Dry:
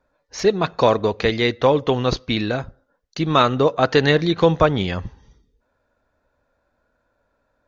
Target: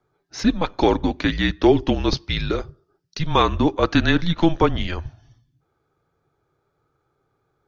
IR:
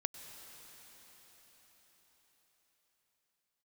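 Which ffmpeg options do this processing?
-filter_complex "[0:a]afreqshift=-170,asettb=1/sr,asplit=3[a][b][c];[a]atrim=end=1.614[d];[b]atrim=start=1.61:end=3.27,asetpts=PTS-STARTPTS,afade=t=in:d=0.004:c=qsin,afade=t=out:st=1.656:d=0.004:c=qsin,equalizer=f=400:t=o:w=0.33:g=7,equalizer=f=1k:t=o:w=0.33:g=-3,equalizer=f=5k:t=o:w=0.33:g=9[e];[c]atrim=start=3.266[f];[d][e]acrossfade=d=0.004:c1=hsin:c2=qsin[g];[g][f]acrossfade=d=0.004:c1=qsin:c2=hsin,volume=-1.5dB"

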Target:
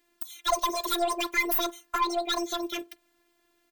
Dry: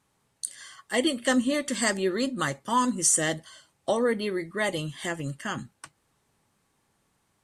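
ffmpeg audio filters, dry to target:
-filter_complex "[0:a]afftfilt=real='hypot(re,im)*cos(PI*b)':imag='0':win_size=1024:overlap=0.75,aeval=exprs='(tanh(12.6*val(0)+0.3)-tanh(0.3))/12.6':c=same,asplit=2[a][b];[b]adelay=93,lowpass=f=870:p=1,volume=-21.5dB,asplit=2[c][d];[d]adelay=93,lowpass=f=870:p=1,volume=0.41,asplit=2[e][f];[f]adelay=93,lowpass=f=870:p=1,volume=0.41[g];[a][c][e][g]amix=inputs=4:normalize=0,asetrate=88200,aresample=44100,volume=5.5dB"

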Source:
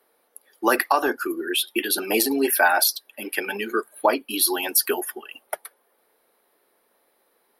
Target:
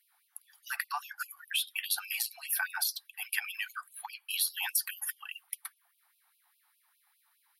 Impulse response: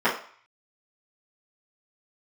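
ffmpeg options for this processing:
-af "acompressor=threshold=-25dB:ratio=6,afftfilt=real='re*gte(b*sr/1024,680*pow(2500/680,0.5+0.5*sin(2*PI*4.9*pts/sr)))':imag='im*gte(b*sr/1024,680*pow(2500/680,0.5+0.5*sin(2*PI*4.9*pts/sr)))':win_size=1024:overlap=0.75,volume=-2dB"

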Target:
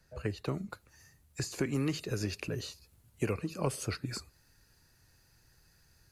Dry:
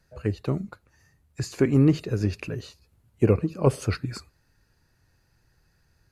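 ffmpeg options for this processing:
-filter_complex "[0:a]asetnsamples=n=441:p=0,asendcmd='0.7 highshelf g 10.5',highshelf=f=3.5k:g=3,acrossover=split=290|950[a][b][c];[a]acompressor=threshold=-34dB:ratio=4[d];[b]acompressor=threshold=-35dB:ratio=4[e];[c]acompressor=threshold=-38dB:ratio=4[f];[d][e][f]amix=inputs=3:normalize=0,volume=-1.5dB"

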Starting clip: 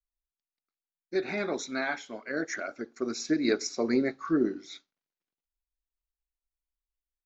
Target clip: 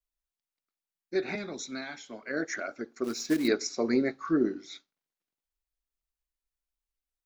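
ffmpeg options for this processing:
-filter_complex "[0:a]asettb=1/sr,asplit=3[a][b][c];[a]atrim=end=1.354[d];[b]atrim=start=1.35:end=2.23,asetpts=PTS-STARTPTS,afade=t=in:d=0.004:c=qsin,afade=t=out:st=0.876:d=0.004:c=qsin,acrossover=split=240|3000[e][f][g];[f]acompressor=threshold=-40dB:ratio=6[h];[e][h][g]amix=inputs=3:normalize=0[i];[c]atrim=start=2.226[j];[d][i]acrossfade=d=0.004:c1=hsin:c2=qsin[k];[k][j]acrossfade=d=0.004:c1=qsin:c2=hsin,asettb=1/sr,asplit=3[l][m][n];[l]atrim=end=3.044[o];[m]atrim=start=3.04:end=3.48,asetpts=PTS-STARTPTS,afade=t=in:d=0.004:c=qsin,afade=t=out:st=0.436:d=0.004:c=qsin,acrusher=bits=4:mode=log:mix=0:aa=0.000001[p];[n]atrim=start=3.476[q];[o][p]acrossfade=d=0.004:c1=hsin:c2=qsin[r];[r][q]acrossfade=d=0.004:c1=qsin:c2=hsin"

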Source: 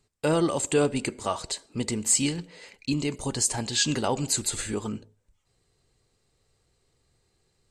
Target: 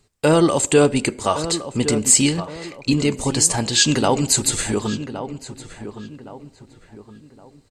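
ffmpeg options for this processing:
-filter_complex "[0:a]asplit=2[a][b];[b]adelay=1116,lowpass=f=1.9k:p=1,volume=-11dB,asplit=2[c][d];[d]adelay=1116,lowpass=f=1.9k:p=1,volume=0.38,asplit=2[e][f];[f]adelay=1116,lowpass=f=1.9k:p=1,volume=0.38,asplit=2[g][h];[h]adelay=1116,lowpass=f=1.9k:p=1,volume=0.38[i];[a][c][e][g][i]amix=inputs=5:normalize=0,volume=8.5dB"

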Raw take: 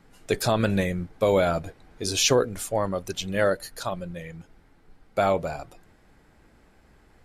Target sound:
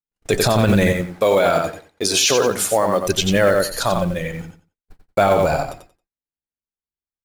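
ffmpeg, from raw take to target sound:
-filter_complex "[0:a]agate=range=-60dB:threshold=-46dB:ratio=16:detection=peak,asettb=1/sr,asplit=3[a][b][c];[a]atrim=end=0.924[d];[b]atrim=start=0.92:end=3.07,asetpts=PTS-STARTPTS,afade=t=in:d=0.004:c=qsin,afade=t=out:st=2.146:d=0.004:c=qsin,highpass=f=380:p=1[e];[c]atrim=start=3.066[f];[d][e]acrossfade=d=0.004:c1=hsin:c2=qsin[g];[g][f]acrossfade=d=0.004:c1=qsin:c2=hsin,acrusher=bits=7:mode=log:mix=0:aa=0.000001,aecho=1:1:90|180|270:0.447|0.0804|0.0145,alimiter=level_in=18dB:limit=-1dB:release=50:level=0:latency=1,volume=-5.5dB"

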